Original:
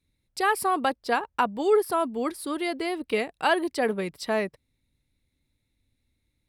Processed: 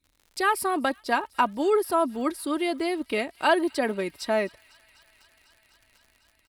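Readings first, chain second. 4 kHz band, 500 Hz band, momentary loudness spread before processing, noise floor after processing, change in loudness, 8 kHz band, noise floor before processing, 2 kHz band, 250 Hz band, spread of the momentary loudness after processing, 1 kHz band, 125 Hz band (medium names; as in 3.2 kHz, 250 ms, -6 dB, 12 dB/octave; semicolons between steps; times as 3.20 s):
+0.5 dB, 0.0 dB, 7 LU, -67 dBFS, +0.5 dB, +1.0 dB, -76 dBFS, +0.5 dB, +2.0 dB, 6 LU, +0.5 dB, no reading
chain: comb 3.2 ms, depth 47%; crackle 100 per s -45 dBFS; feedback echo behind a high-pass 250 ms, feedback 84%, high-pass 2.3 kHz, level -23.5 dB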